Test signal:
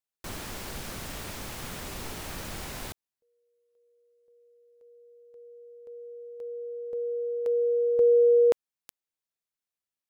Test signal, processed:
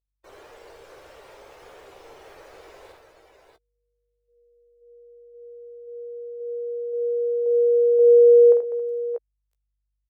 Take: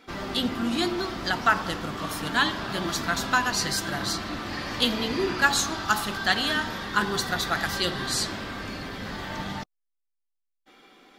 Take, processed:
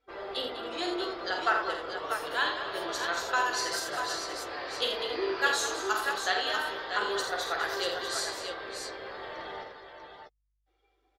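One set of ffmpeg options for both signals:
-filter_complex "[0:a]aeval=exprs='val(0)+0.00158*(sin(2*PI*50*n/s)+sin(2*PI*2*50*n/s)/2+sin(2*PI*3*50*n/s)/3+sin(2*PI*4*50*n/s)/4+sin(2*PI*5*50*n/s)/5)':c=same,afftdn=nr=19:nf=-42,lowshelf=f=310:t=q:w=3:g=-13,asplit=2[a][b];[b]adelay=15,volume=-10dB[c];[a][c]amix=inputs=2:normalize=0,aecho=1:1:48|82|199|273|623|641:0.501|0.422|0.299|0.15|0.168|0.473,volume=-8dB"

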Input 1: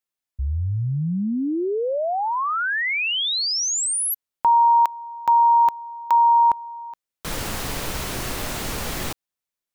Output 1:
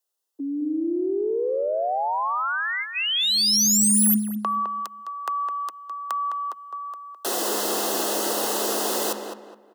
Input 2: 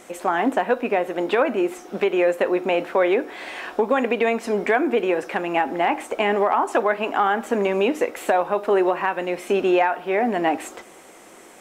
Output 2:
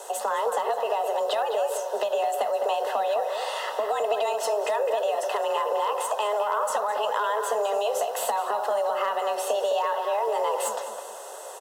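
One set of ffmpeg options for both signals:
-filter_complex "[0:a]highpass=130,equalizer=f=1.8k:t=o:w=1.5:g=-10.5,acrossover=split=4100[a][b];[a]acompressor=threshold=-33dB:ratio=8:attack=11:release=46:knee=6:detection=rms[c];[b]aeval=exprs='clip(val(0),-1,0.0133)':c=same[d];[c][d]amix=inputs=2:normalize=0,afreqshift=210,asuperstop=centerf=2300:order=12:qfactor=6.1,asplit=2[e][f];[f]adelay=209,lowpass=f=2.4k:p=1,volume=-6dB,asplit=2[g][h];[h]adelay=209,lowpass=f=2.4k:p=1,volume=0.33,asplit=2[i][j];[j]adelay=209,lowpass=f=2.4k:p=1,volume=0.33,asplit=2[k][l];[l]adelay=209,lowpass=f=2.4k:p=1,volume=0.33[m];[g][i][k][m]amix=inputs=4:normalize=0[n];[e][n]amix=inputs=2:normalize=0,volume=8dB"

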